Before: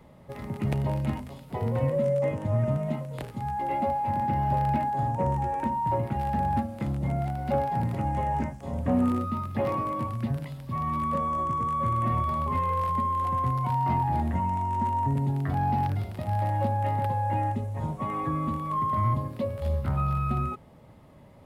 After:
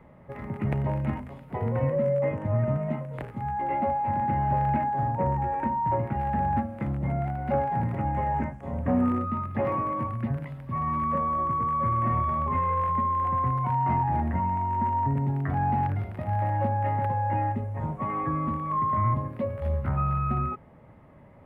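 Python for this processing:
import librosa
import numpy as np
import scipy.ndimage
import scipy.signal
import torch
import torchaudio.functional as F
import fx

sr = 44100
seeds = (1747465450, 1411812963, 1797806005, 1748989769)

y = fx.high_shelf_res(x, sr, hz=2900.0, db=-12.5, q=1.5)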